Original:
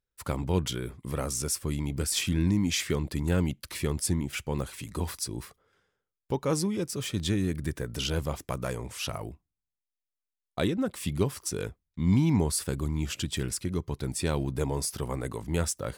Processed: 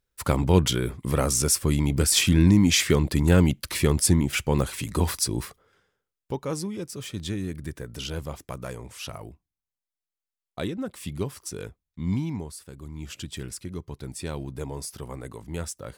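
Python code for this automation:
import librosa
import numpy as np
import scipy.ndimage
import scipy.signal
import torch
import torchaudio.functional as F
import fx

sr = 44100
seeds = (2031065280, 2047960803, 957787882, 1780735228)

y = fx.gain(x, sr, db=fx.line((5.4, 8.0), (6.54, -3.0), (12.13, -3.0), (12.63, -14.0), (13.14, -4.5)))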